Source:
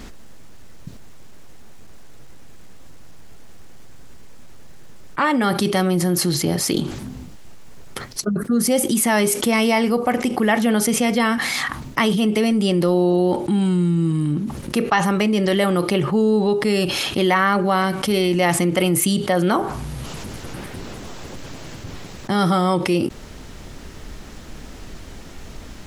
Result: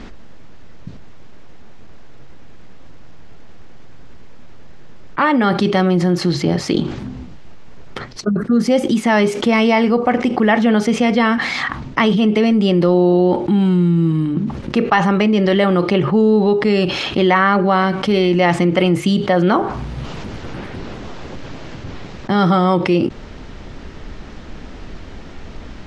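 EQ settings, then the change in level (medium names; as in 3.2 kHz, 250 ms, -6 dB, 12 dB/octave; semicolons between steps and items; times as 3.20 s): distance through air 160 m; hum notches 50/100/150 Hz; +4.5 dB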